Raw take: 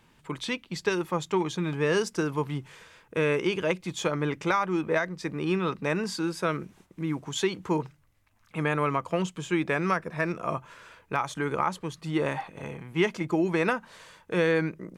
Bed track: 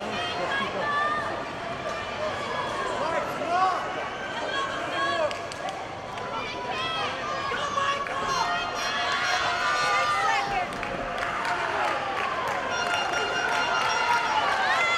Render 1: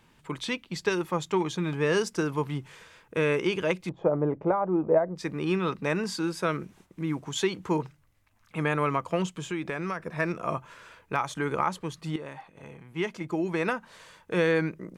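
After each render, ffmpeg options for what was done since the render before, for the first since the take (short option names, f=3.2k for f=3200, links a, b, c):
-filter_complex "[0:a]asettb=1/sr,asplit=3[a][b][c];[a]atrim=end=3.894[d];[b]atrim=start=3.89:end=5.16,asetpts=PTS-STARTPTS,afade=t=in:d=0.004:c=qsin,afade=t=out:st=1.266:d=0.004:c=qsin,lowpass=f=680:t=q:w=2.1[e];[c]atrim=start=5.156[f];[d][e]acrossfade=d=0.004:c1=hsin:c2=qsin[g];[g][f]acrossfade=d=0.004:c1=qsin:c2=hsin,asettb=1/sr,asplit=3[h][i][j];[h]atrim=end=9.354[k];[i]atrim=start=9.35:end=10.05,asetpts=PTS-STARTPTS,afade=t=in:d=0.004:c=qsin,afade=t=out:st=0.696:d=0.004:c=qsin,acompressor=threshold=-29dB:ratio=3:attack=3.2:release=140:knee=1:detection=peak[l];[j]atrim=start=10.046[m];[k][l]acrossfade=d=0.004:c1=hsin:c2=qsin[n];[n][m]acrossfade=d=0.004:c1=qsin:c2=hsin,asplit=2[o][p];[o]atrim=end=12.16,asetpts=PTS-STARTPTS,afade=t=out:st=12.156:d=0.004:c=hsin:silence=0.211349[q];[p]atrim=start=12.16,asetpts=PTS-STARTPTS,afade=t=in:d=2.17:silence=0.211349[r];[q][r]concat=n=2:v=0:a=1"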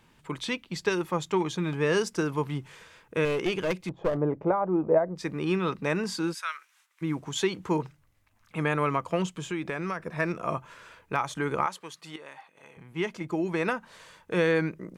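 -filter_complex "[0:a]asettb=1/sr,asplit=3[a][b][c];[a]atrim=end=3.254[d];[b]atrim=start=3.25:end=4.17,asetpts=PTS-STARTPTS,afade=t=in:d=0.004:c=qsin,afade=t=out:st=0.916:d=0.004:c=qsin,aeval=exprs='clip(val(0),-1,0.0531)':c=same[e];[c]atrim=start=4.166[f];[d][e]acrossfade=d=0.004:c1=hsin:c2=qsin[g];[g][f]acrossfade=d=0.004:c1=qsin:c2=hsin,asplit=3[h][i][j];[h]afade=t=out:st=6.33:d=0.02[k];[i]highpass=f=1.2k:w=0.5412,highpass=f=1.2k:w=1.3066,afade=t=in:st=6.33:d=0.02,afade=t=out:st=7.01:d=0.02[l];[j]afade=t=in:st=7.01:d=0.02[m];[k][l][m]amix=inputs=3:normalize=0,asettb=1/sr,asplit=3[n][o][p];[n]atrim=end=11.664[q];[o]atrim=start=11.66:end=12.77,asetpts=PTS-STARTPTS,afade=t=in:d=0.004:c=qsin,afade=t=out:st=1.106:d=0.004:c=qsin,highpass=f=1k:p=1[r];[p]atrim=start=12.766[s];[q][r]acrossfade=d=0.004:c1=hsin:c2=qsin[t];[t][s]acrossfade=d=0.004:c1=qsin:c2=hsin"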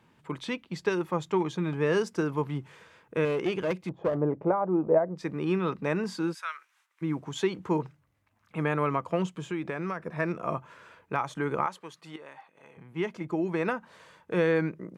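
-af "highpass=89,highshelf=f=2.6k:g=-9"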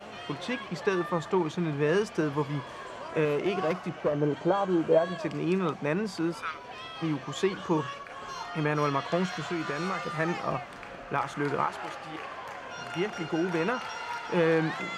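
-filter_complex "[1:a]volume=-12.5dB[a];[0:a][a]amix=inputs=2:normalize=0"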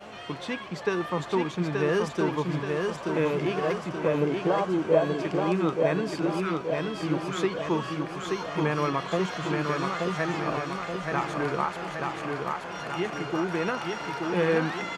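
-af "aecho=1:1:878|1756|2634|3512|4390|5268|6146|7024:0.668|0.374|0.21|0.117|0.0657|0.0368|0.0206|0.0115"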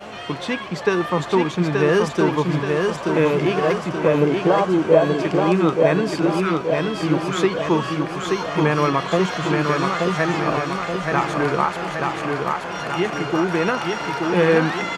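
-af "volume=8dB,alimiter=limit=-3dB:level=0:latency=1"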